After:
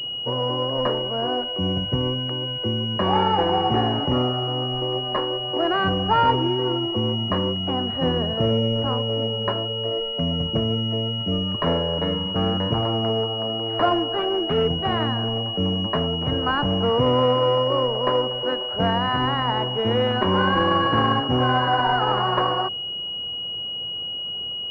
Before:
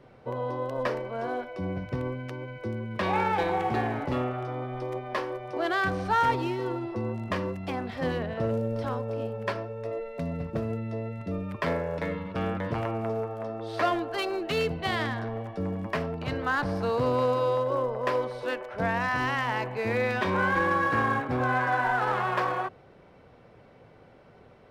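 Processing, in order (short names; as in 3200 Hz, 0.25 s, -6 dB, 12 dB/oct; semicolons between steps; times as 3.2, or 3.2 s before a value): bell 570 Hz -2.5 dB; pulse-width modulation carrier 2900 Hz; gain +8 dB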